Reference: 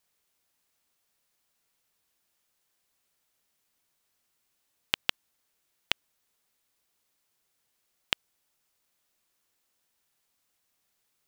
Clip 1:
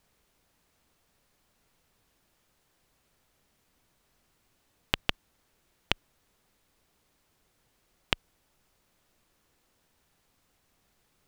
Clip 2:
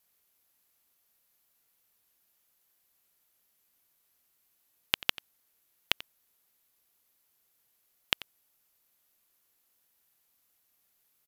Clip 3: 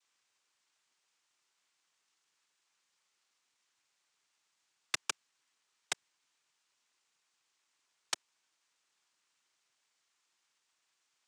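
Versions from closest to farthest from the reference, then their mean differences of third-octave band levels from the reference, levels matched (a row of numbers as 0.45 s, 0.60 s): 2, 1, 3; 1.5 dB, 4.5 dB, 7.0 dB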